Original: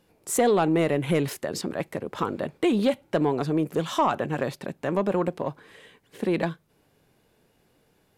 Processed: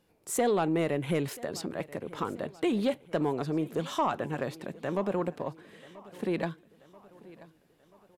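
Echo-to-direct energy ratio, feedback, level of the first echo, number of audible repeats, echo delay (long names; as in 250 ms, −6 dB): −19.0 dB, 52%, −20.5 dB, 3, 984 ms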